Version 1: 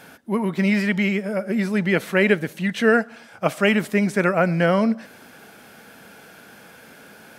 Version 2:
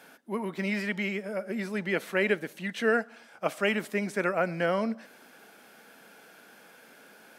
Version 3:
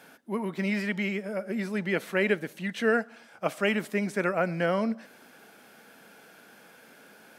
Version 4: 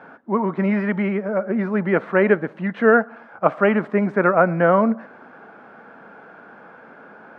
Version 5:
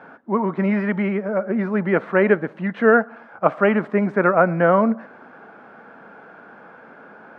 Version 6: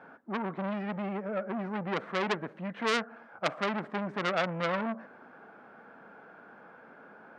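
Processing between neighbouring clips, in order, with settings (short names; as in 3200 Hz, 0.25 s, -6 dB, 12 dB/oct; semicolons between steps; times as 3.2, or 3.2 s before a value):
HPF 240 Hz 12 dB/oct; gain -7.5 dB
low shelf 110 Hz +11 dB
synth low-pass 1200 Hz, resonance Q 1.8; gain +9 dB
nothing audible
core saturation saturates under 2700 Hz; gain -8.5 dB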